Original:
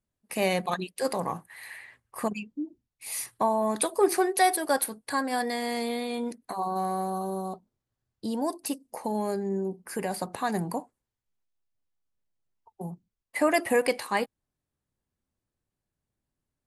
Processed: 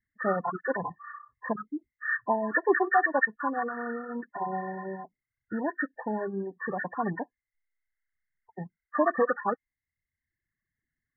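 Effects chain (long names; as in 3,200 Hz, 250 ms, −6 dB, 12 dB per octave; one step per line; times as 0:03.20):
hearing-aid frequency compression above 1,000 Hz 4 to 1
spectral peaks only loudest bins 32
reverb reduction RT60 1.2 s
phase-vocoder stretch with locked phases 0.67×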